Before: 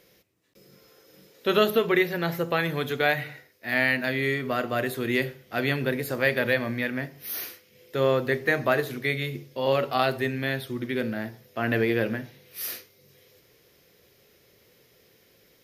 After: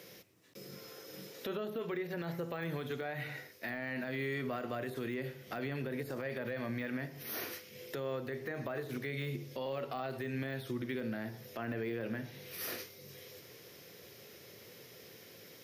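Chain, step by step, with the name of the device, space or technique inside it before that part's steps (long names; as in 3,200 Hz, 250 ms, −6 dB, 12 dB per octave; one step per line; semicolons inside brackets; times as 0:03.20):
broadcast voice chain (high-pass filter 88 Hz 24 dB per octave; de-essing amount 100%; downward compressor 5 to 1, threshold −40 dBFS, peak gain reduction 20 dB; parametric band 5,600 Hz +3 dB 0.2 octaves; brickwall limiter −34.5 dBFS, peak gain reduction 9 dB)
level +5.5 dB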